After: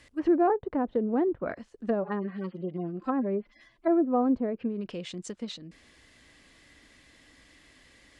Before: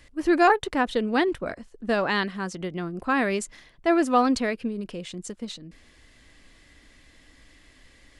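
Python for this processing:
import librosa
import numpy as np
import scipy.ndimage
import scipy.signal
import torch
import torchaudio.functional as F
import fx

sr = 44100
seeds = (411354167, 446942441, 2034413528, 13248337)

y = fx.hpss_only(x, sr, part='harmonic', at=(2.01, 4.23), fade=0.02)
y = fx.env_lowpass_down(y, sr, base_hz=590.0, full_db=-21.5)
y = fx.highpass(y, sr, hz=100.0, slope=6)
y = y * librosa.db_to_amplitude(-1.0)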